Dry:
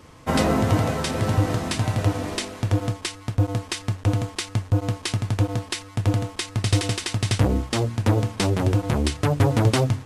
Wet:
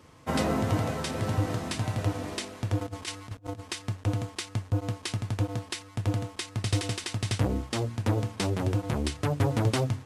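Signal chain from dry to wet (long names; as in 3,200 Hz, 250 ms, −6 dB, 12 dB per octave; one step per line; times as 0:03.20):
high-pass filter 56 Hz 12 dB per octave
0:02.81–0:03.60: compressor whose output falls as the input rises −30 dBFS, ratio −0.5
level −6.5 dB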